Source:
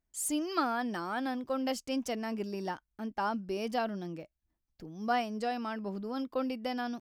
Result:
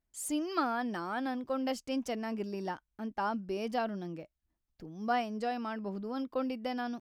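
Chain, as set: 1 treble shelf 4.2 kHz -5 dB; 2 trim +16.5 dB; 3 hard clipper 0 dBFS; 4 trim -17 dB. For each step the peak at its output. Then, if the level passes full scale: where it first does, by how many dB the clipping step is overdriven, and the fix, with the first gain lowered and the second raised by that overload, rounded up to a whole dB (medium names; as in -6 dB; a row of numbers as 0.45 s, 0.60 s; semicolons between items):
-18.0 dBFS, -1.5 dBFS, -1.5 dBFS, -18.5 dBFS; nothing clips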